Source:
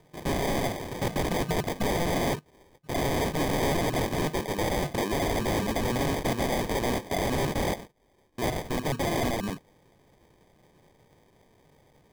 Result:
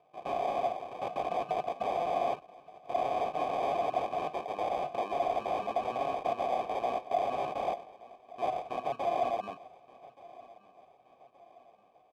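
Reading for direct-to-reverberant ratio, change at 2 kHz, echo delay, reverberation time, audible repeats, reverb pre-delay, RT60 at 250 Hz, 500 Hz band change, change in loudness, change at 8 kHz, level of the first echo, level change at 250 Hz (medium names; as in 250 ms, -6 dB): no reverb, -12.0 dB, 1174 ms, no reverb, 3, no reverb, no reverb, -3.0 dB, -4.5 dB, under -20 dB, -20.5 dB, -16.0 dB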